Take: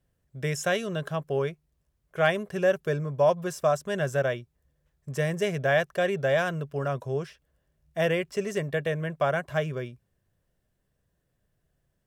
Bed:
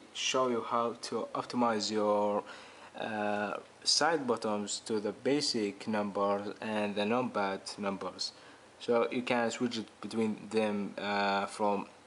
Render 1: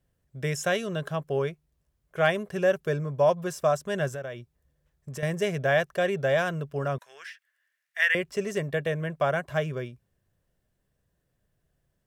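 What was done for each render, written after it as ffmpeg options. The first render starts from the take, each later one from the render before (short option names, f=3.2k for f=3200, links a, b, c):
-filter_complex "[0:a]asettb=1/sr,asplit=3[a][b][c];[a]atrim=end=4.084[d];[b]atrim=start=4.08:end=5.23,asetpts=PTS-STARTPTS,afade=t=in:d=0.004:c=qsin,afade=t=out:st=1.146:d=0.004:c=qsin,acompressor=threshold=-35dB:ratio=3:attack=3.2:release=140:knee=1:detection=peak[e];[c]atrim=start=5.226[f];[d][e]acrossfade=d=0.004:c1=hsin:c2=qsin[g];[g][f]acrossfade=d=0.004:c1=qsin:c2=hsin,asettb=1/sr,asplit=3[h][i][j];[h]atrim=end=6.984[k];[i]atrim=start=6.98:end=8.15,asetpts=PTS-STARTPTS,afade=t=in:d=0.004:c=qsin,afade=t=out:st=1.166:d=0.004:c=qsin,highpass=f=1.8k:t=q:w=4.1[l];[j]atrim=start=8.146[m];[k][l]acrossfade=d=0.004:c1=hsin:c2=qsin[n];[n][m]acrossfade=d=0.004:c1=qsin:c2=hsin"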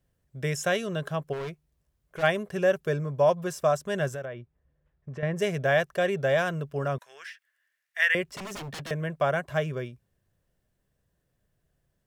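-filter_complex "[0:a]asplit=3[a][b][c];[a]afade=t=out:st=1.32:d=0.02[d];[b]asoftclip=type=hard:threshold=-32dB,afade=t=in:st=1.32:d=0.02,afade=t=out:st=2.22:d=0.02[e];[c]afade=t=in:st=2.22:d=0.02[f];[d][e][f]amix=inputs=3:normalize=0,asettb=1/sr,asplit=3[g][h][i];[g]atrim=end=4.254[j];[h]atrim=start=4.25:end=5.36,asetpts=PTS-STARTPTS,afade=t=in:d=0.004:c=qsin,afade=t=out:st=1.106:d=0.004:c=qsin,lowpass=2.3k[k];[i]atrim=start=5.356[l];[j][k]acrossfade=d=0.004:c1=hsin:c2=qsin[m];[m][l]acrossfade=d=0.004:c1=qsin:c2=hsin,asettb=1/sr,asplit=3[n][o][p];[n]atrim=end=8.244[q];[o]atrim=start=8.24:end=8.91,asetpts=PTS-STARTPTS,afade=t=in:d=0.004:c=qsin,afade=t=out:st=0.666:d=0.004:c=qsin,aeval=exprs='0.0224*(abs(mod(val(0)/0.0224+3,4)-2)-1)':c=same[r];[p]atrim=start=8.906[s];[q][r]acrossfade=d=0.004:c1=hsin:c2=qsin[t];[t][s]acrossfade=d=0.004:c1=qsin:c2=hsin"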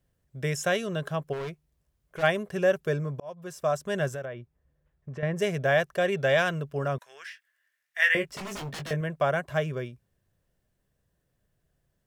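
-filter_complex "[0:a]asettb=1/sr,asplit=3[a][b][c];[a]atrim=end=6.124[d];[b]atrim=start=6.12:end=6.59,asetpts=PTS-STARTPTS,afade=t=in:d=0.004:c=qsin,afade=t=out:st=0.466:d=0.004:c=qsin,equalizer=f=3k:w=0.65:g=5.5[e];[c]atrim=start=6.586[f];[d][e]acrossfade=d=0.004:c1=hsin:c2=qsin[g];[g][f]acrossfade=d=0.004:c1=qsin:c2=hsin,asettb=1/sr,asplit=3[h][i][j];[h]atrim=end=7.294[k];[i]atrim=start=7.29:end=9.01,asetpts=PTS-STARTPTS,afade=t=in:d=0.004:c=qsin,afade=t=out:st=1.716:d=0.004:c=qsin,asplit=2[l][m];[m]adelay=20,volume=-7dB[n];[l][n]amix=inputs=2:normalize=0,atrim=end_sample=75852[o];[j]atrim=start=9.006[p];[k][o]acrossfade=d=0.004:c1=hsin:c2=qsin[q];[q][p]acrossfade=d=0.004:c1=qsin:c2=hsin,asplit=2[r][s];[r]atrim=end=3.2,asetpts=PTS-STARTPTS,afade=t=out:st=3.196:d=0.004:c=hsin[t];[s]atrim=start=3.2,asetpts=PTS-STARTPTS,afade=t=in:d=0.68[u];[t][u]concat=n=2:v=0:a=1"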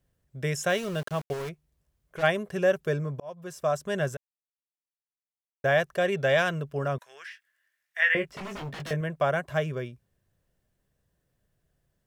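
-filter_complex "[0:a]asettb=1/sr,asplit=3[a][b][c];[a]atrim=end=0.694[d];[b]atrim=start=0.69:end=1.49,asetpts=PTS-STARTPTS,afade=t=in:d=0.004:c=qsin,afade=t=out:st=0.796:d=0.004:c=qsin,aeval=exprs='val(0)*gte(abs(val(0)),0.0133)':c=same[e];[c]atrim=start=1.486[f];[d][e]acrossfade=d=0.004:c1=hsin:c2=qsin[g];[g][f]acrossfade=d=0.004:c1=qsin:c2=hsin,asettb=1/sr,asplit=3[h][i][j];[h]atrim=end=7.084[k];[i]atrim=start=7.08:end=8.8,asetpts=PTS-STARTPTS,afade=t=in:d=0.004:c=qsin,afade=t=out:st=1.716:d=0.004:c=qsin,acrossover=split=3500[l][m];[m]acompressor=threshold=-53dB:ratio=4:attack=1:release=60[n];[l][n]amix=inputs=2:normalize=0[o];[j]atrim=start=8.796[p];[k][o]acrossfade=d=0.004:c1=hsin:c2=qsin[q];[q][p]acrossfade=d=0.004:c1=qsin:c2=hsin,asplit=3[r][s][t];[r]atrim=end=4.17,asetpts=PTS-STARTPTS,afade=t=out:st=4.166:d=0.004:c=hsin[u];[s]atrim=start=4.17:end=5.64,asetpts=PTS-STARTPTS,volume=0[v];[t]atrim=start=5.64,asetpts=PTS-STARTPTS,afade=t=in:d=0.004:c=hsin[w];[u][v][w]concat=n=3:v=0:a=1"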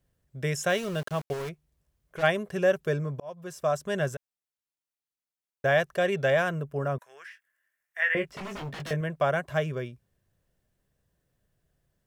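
-filter_complex "[0:a]asettb=1/sr,asplit=3[a][b][c];[a]atrim=end=6.304[d];[b]atrim=start=6.3:end=8.17,asetpts=PTS-STARTPTS,afade=t=in:d=0.004:c=qsin,afade=t=out:st=1.866:d=0.004:c=qsin,equalizer=f=3.9k:w=0.85:g=-8.5[e];[c]atrim=start=8.166[f];[d][e]acrossfade=d=0.004:c1=hsin:c2=qsin[g];[g][f]acrossfade=d=0.004:c1=qsin:c2=hsin"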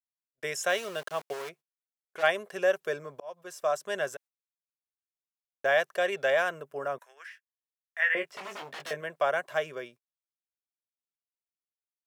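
-af "highpass=490,agate=range=-40dB:threshold=-52dB:ratio=16:detection=peak"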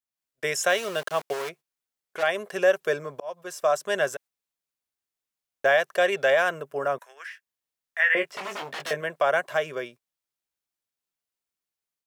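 -af "alimiter=limit=-18dB:level=0:latency=1:release=141,dynaudnorm=f=110:g=3:m=6.5dB"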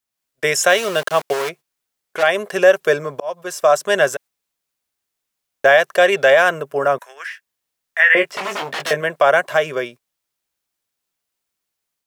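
-af "volume=9.5dB,alimiter=limit=-3dB:level=0:latency=1"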